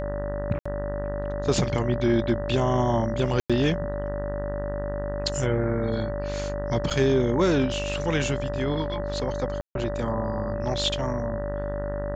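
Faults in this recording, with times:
buzz 50 Hz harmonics 39 -32 dBFS
whine 580 Hz -30 dBFS
0.59–0.66 s: dropout 65 ms
3.40–3.50 s: dropout 96 ms
6.90–6.91 s: dropout 7.1 ms
9.61–9.75 s: dropout 142 ms

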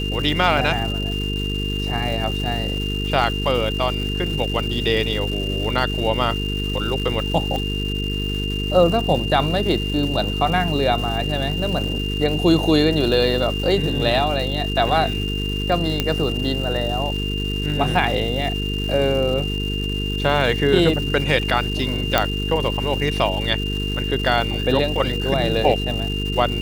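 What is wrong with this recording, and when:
buzz 50 Hz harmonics 9 -25 dBFS
crackle 510 per s -29 dBFS
whine 2.8 kHz -27 dBFS
7.56 s: pop -13 dBFS
16.00 s: pop -5 dBFS
22.18 s: pop -1 dBFS

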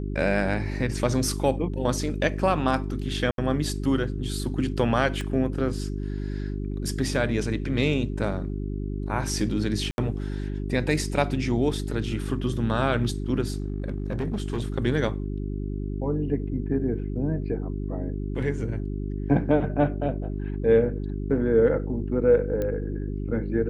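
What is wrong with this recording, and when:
hum 50 Hz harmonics 8 -30 dBFS
3.31–3.38 s: dropout 72 ms
5.21 s: pop -20 dBFS
9.91–9.98 s: dropout 71 ms
13.50–14.74 s: clipped -23 dBFS
22.62 s: pop -17 dBFS

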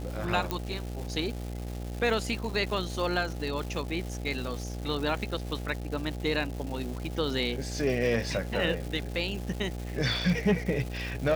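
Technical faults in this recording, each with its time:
buzz 60 Hz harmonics 14 -36 dBFS
crackle 450 per s -36 dBFS
0.51 s: pop -14 dBFS

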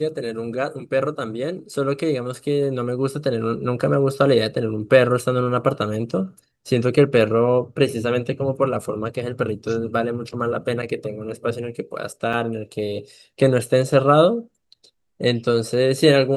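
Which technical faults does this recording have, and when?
12.33 s: dropout 4 ms

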